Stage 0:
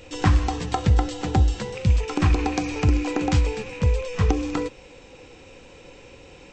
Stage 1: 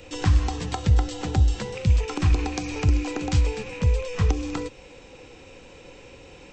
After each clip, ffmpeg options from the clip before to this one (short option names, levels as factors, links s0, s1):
-filter_complex "[0:a]acrossover=split=150|3000[s0][s1][s2];[s1]acompressor=threshold=0.0355:ratio=3[s3];[s0][s3][s2]amix=inputs=3:normalize=0"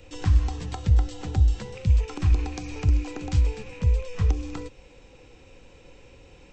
-af "lowshelf=f=100:g=10,volume=0.447"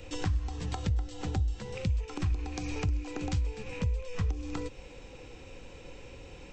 -af "acompressor=threshold=0.02:ratio=3,volume=1.41"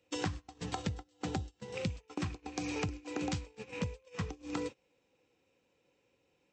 -af "highpass=160,agate=range=0.0562:threshold=0.00891:ratio=16:detection=peak,volume=1.12"